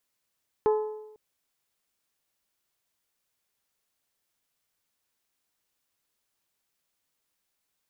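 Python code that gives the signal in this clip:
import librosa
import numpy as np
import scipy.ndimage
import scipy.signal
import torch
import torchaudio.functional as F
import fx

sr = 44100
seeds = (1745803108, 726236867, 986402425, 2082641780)

y = fx.strike_metal(sr, length_s=0.5, level_db=-18.0, body='bell', hz=429.0, decay_s=0.93, tilt_db=8, modes=5)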